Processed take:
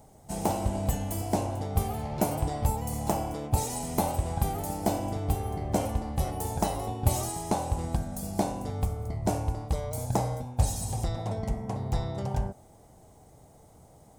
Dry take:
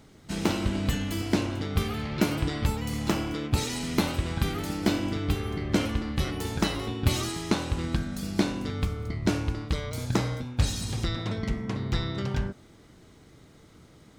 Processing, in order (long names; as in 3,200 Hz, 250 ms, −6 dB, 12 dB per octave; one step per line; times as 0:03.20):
drawn EQ curve 100 Hz 0 dB, 330 Hz −7 dB, 780 Hz +10 dB, 1,300 Hz −10 dB, 1,900 Hz −11 dB, 3,900 Hz −12 dB, 8,900 Hz +6 dB